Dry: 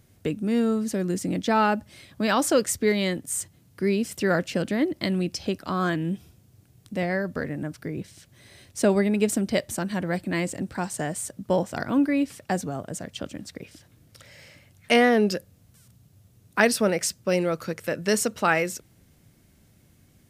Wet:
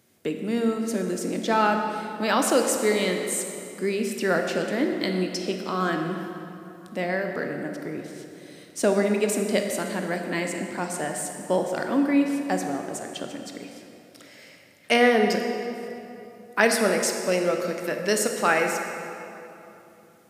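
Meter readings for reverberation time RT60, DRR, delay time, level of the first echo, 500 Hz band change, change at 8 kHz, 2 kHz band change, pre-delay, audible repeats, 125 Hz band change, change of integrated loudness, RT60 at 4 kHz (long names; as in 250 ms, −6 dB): 3.0 s, 3.5 dB, no echo audible, no echo audible, +1.5 dB, +1.0 dB, +1.5 dB, 19 ms, no echo audible, −4.5 dB, +0.5 dB, 2.0 s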